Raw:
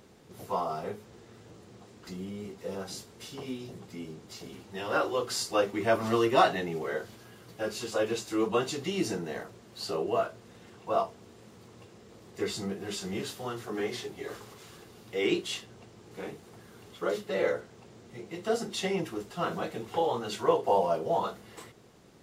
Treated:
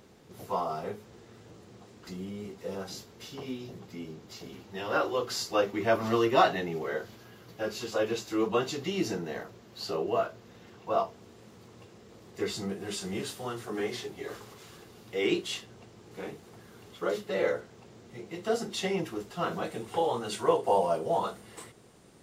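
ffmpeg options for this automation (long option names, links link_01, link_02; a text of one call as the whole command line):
ffmpeg -i in.wav -af "asetnsamples=nb_out_samples=441:pad=0,asendcmd='2.89 equalizer g -12;11.14 equalizer g -3.5;12.69 equalizer g 4;13.92 equalizer g -2;19.65 equalizer g 9.5',equalizer=frequency=8900:width_type=o:width=0.31:gain=-3" out.wav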